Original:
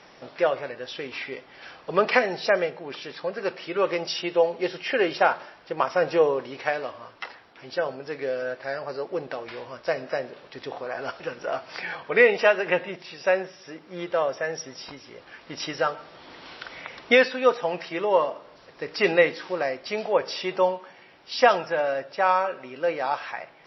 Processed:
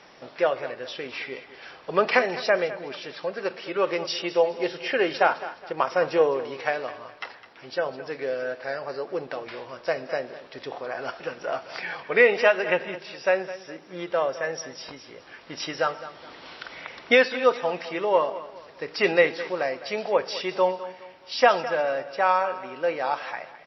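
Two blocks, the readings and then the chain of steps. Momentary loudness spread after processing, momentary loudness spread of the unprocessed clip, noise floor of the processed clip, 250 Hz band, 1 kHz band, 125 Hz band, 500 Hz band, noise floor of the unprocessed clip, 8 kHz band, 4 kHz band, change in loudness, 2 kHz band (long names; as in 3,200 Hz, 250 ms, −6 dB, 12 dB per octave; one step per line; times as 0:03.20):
18 LU, 19 LU, −49 dBFS, −1.0 dB, 0.0 dB, −1.5 dB, 0.0 dB, −52 dBFS, can't be measured, 0.0 dB, −0.5 dB, 0.0 dB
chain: low-shelf EQ 190 Hz −3 dB
repeating echo 208 ms, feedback 35%, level −15 dB
every ending faded ahead of time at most 470 dB per second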